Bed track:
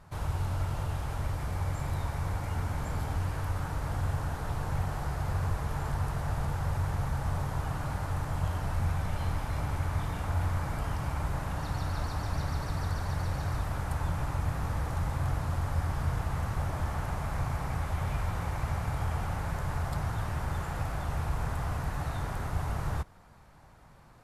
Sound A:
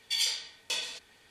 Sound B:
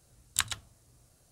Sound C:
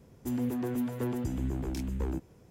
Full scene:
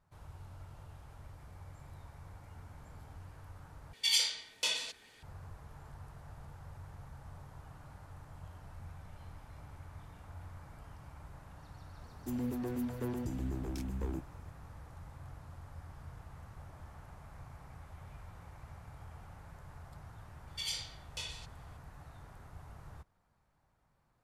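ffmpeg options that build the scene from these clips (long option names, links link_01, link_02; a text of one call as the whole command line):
ffmpeg -i bed.wav -i cue0.wav -i cue1.wav -i cue2.wav -filter_complex "[1:a]asplit=2[link_01][link_02];[0:a]volume=-19dB[link_03];[link_02]aresample=32000,aresample=44100[link_04];[link_03]asplit=2[link_05][link_06];[link_05]atrim=end=3.934[link_07];[link_01]atrim=end=1.3[link_08];[link_06]atrim=start=5.226[link_09];[3:a]atrim=end=2.5,asetpts=PTS-STARTPTS,volume=-5dB,afade=type=in:duration=0.004:curve=hsin,afade=type=out:start_time=2.496:duration=0.004:curve=hsin,adelay=12010[link_10];[link_04]atrim=end=1.3,asetpts=PTS-STARTPTS,volume=-9.5dB,afade=type=in:duration=0.004:curve=hsin,afade=type=out:start_time=1.296:duration=0.004:curve=hsin,adelay=20470[link_11];[link_07][link_08]acrossfade=duration=0.004:curve1=hsin:curve2=hsin[link_12];[link_12][link_09]acrossfade=duration=0.004:curve1=hsin:curve2=hsin[link_13];[link_13][link_10][link_11]amix=inputs=3:normalize=0" out.wav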